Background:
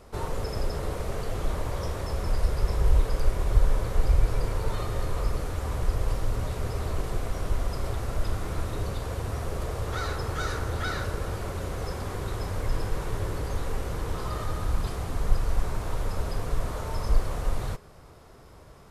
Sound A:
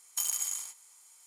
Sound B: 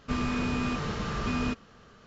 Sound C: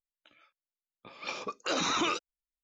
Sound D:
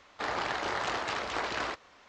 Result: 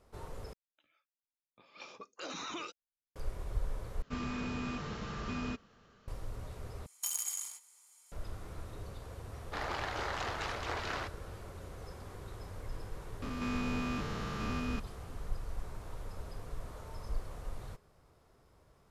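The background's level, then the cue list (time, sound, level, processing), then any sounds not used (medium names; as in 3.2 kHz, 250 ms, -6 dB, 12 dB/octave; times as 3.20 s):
background -14.5 dB
0.53 s: replace with C -12.5 dB
4.02 s: replace with B -8.5 dB
6.86 s: replace with A -4.5 dB
9.33 s: add D -5.5 dB
13.22 s: add B -5 dB + spectrogram pixelated in time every 200 ms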